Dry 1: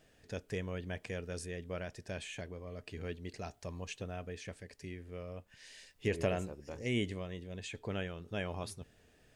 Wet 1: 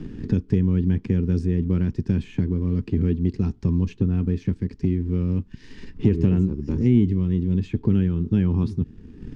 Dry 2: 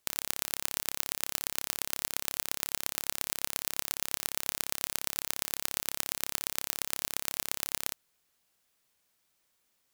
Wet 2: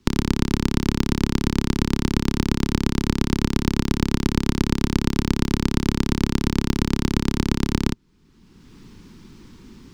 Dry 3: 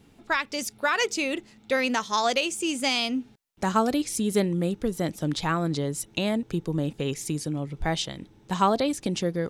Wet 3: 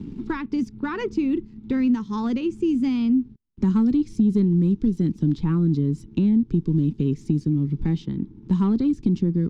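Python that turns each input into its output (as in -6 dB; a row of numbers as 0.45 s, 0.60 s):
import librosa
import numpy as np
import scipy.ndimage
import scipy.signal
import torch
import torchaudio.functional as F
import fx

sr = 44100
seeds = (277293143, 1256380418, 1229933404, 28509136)

y = fx.tilt_eq(x, sr, slope=-2.5)
y = fx.leveller(y, sr, passes=1)
y = fx.curve_eq(y, sr, hz=(110.0, 230.0, 390.0, 640.0, 910.0, 1700.0, 5300.0, 11000.0), db=(0, 7, 0, -27, -9, -12, -9, -23))
y = fx.band_squash(y, sr, depth_pct=70)
y = y * 10.0 ** (-22 / 20.0) / np.sqrt(np.mean(np.square(y)))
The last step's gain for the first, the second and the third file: +9.5 dB, +18.5 dB, -5.0 dB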